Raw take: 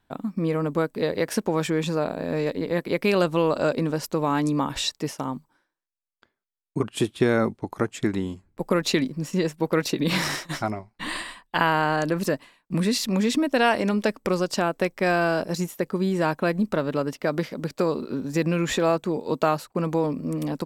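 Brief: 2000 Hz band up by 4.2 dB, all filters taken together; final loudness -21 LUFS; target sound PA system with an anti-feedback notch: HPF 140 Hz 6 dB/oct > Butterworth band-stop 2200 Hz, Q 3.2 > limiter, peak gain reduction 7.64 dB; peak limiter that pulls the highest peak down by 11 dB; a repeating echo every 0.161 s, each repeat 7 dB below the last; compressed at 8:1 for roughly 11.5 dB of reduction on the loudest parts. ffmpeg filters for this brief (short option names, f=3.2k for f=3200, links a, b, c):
-af "equalizer=f=2k:t=o:g=7.5,acompressor=threshold=-25dB:ratio=8,alimiter=limit=-21.5dB:level=0:latency=1,highpass=f=140:p=1,asuperstop=centerf=2200:order=8:qfactor=3.2,aecho=1:1:161|322|483|644|805:0.447|0.201|0.0905|0.0407|0.0183,volume=14dB,alimiter=limit=-11dB:level=0:latency=1"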